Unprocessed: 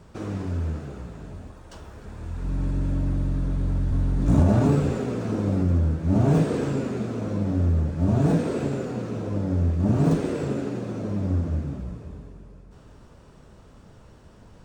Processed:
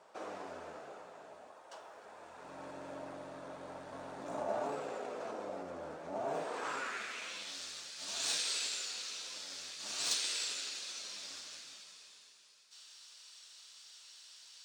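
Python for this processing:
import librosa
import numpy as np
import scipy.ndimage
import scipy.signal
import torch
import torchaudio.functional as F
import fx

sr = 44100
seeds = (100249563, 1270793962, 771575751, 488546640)

p1 = fx.cheby_harmonics(x, sr, harmonics=(7,), levels_db=(-32,), full_scale_db=-9.0)
p2 = fx.filter_sweep_bandpass(p1, sr, from_hz=670.0, to_hz=4200.0, start_s=6.38, end_s=7.58, q=1.9)
p3 = fx.over_compress(p2, sr, threshold_db=-41.0, ratio=-1.0)
p4 = p2 + (p3 * 10.0 ** (-2.0 / 20.0))
p5 = np.diff(p4, prepend=0.0)
y = p5 * 10.0 ** (14.0 / 20.0)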